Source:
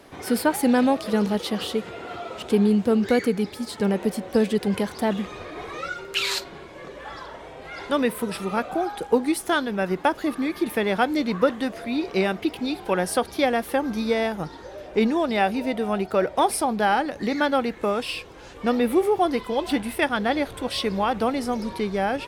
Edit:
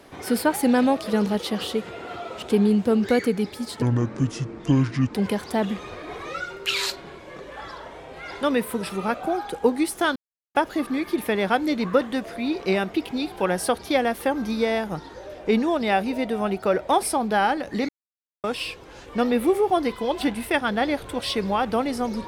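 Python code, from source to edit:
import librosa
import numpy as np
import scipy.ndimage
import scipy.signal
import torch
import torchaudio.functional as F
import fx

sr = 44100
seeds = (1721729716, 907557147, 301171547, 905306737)

y = fx.edit(x, sr, fx.speed_span(start_s=3.82, length_s=0.81, speed=0.61),
    fx.silence(start_s=9.64, length_s=0.39),
    fx.silence(start_s=17.37, length_s=0.55), tone=tone)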